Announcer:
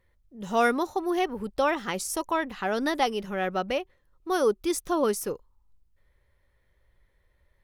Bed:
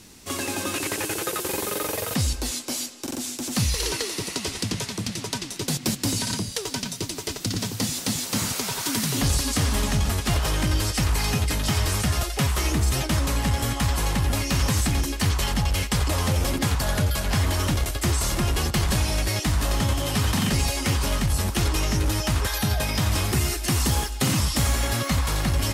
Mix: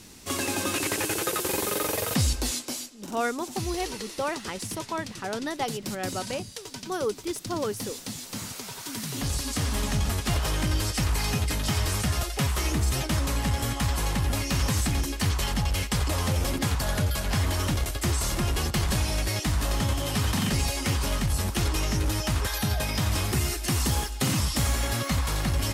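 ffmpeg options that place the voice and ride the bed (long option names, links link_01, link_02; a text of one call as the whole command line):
ffmpeg -i stem1.wav -i stem2.wav -filter_complex "[0:a]adelay=2600,volume=-5dB[link_01];[1:a]volume=7dB,afade=type=out:start_time=2.51:duration=0.39:silence=0.316228,afade=type=in:start_time=8.86:duration=1.19:silence=0.446684[link_02];[link_01][link_02]amix=inputs=2:normalize=0" out.wav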